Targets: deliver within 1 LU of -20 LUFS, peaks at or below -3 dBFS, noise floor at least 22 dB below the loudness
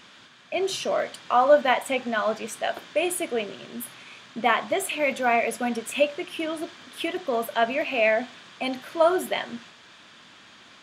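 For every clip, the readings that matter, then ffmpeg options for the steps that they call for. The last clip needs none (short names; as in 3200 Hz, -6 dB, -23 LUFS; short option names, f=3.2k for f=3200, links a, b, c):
loudness -25.0 LUFS; peak -5.0 dBFS; loudness target -20.0 LUFS
-> -af "volume=5dB,alimiter=limit=-3dB:level=0:latency=1"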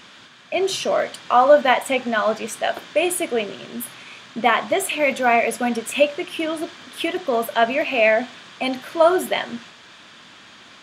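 loudness -20.5 LUFS; peak -3.0 dBFS; noise floor -46 dBFS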